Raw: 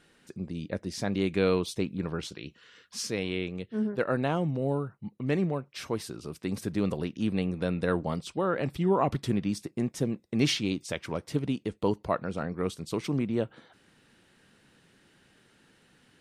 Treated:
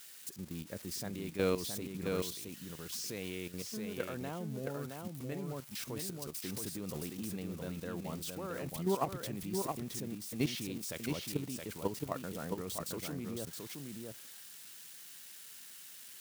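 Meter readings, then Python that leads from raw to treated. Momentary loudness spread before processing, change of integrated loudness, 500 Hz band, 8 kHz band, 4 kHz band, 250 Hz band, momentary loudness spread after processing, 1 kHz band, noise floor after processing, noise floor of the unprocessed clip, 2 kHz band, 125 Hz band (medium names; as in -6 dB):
10 LU, -9.0 dB, -9.0 dB, +0.5 dB, -6.5 dB, -10.0 dB, 13 LU, -8.5 dB, -52 dBFS, -64 dBFS, -9.0 dB, -10.0 dB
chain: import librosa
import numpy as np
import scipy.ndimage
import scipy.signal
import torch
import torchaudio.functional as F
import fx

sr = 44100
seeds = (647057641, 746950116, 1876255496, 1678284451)

y = x + 0.5 * 10.0 ** (-29.0 / 20.0) * np.diff(np.sign(x), prepend=np.sign(x[:1]))
y = fx.level_steps(y, sr, step_db=12)
y = y + 10.0 ** (-4.5 / 20.0) * np.pad(y, (int(669 * sr / 1000.0), 0))[:len(y)]
y = y * 10.0 ** (-5.0 / 20.0)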